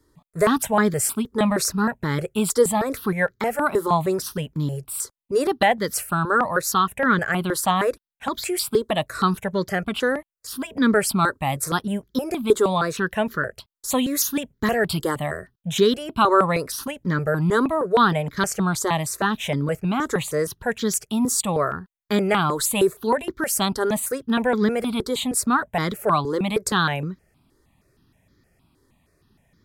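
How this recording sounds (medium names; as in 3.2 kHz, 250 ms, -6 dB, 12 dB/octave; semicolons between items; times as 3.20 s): notches that jump at a steady rate 6.4 Hz 690–2700 Hz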